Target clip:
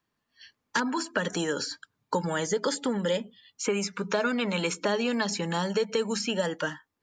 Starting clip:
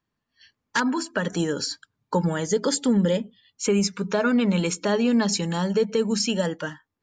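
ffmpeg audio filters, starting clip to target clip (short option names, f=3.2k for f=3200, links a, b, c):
-filter_complex "[0:a]lowshelf=f=190:g=-8,acrossover=split=570|2500[a][b][c];[a]acompressor=threshold=-33dB:ratio=4[d];[b]acompressor=threshold=-31dB:ratio=4[e];[c]acompressor=threshold=-38dB:ratio=4[f];[d][e][f]amix=inputs=3:normalize=0,volume=3dB"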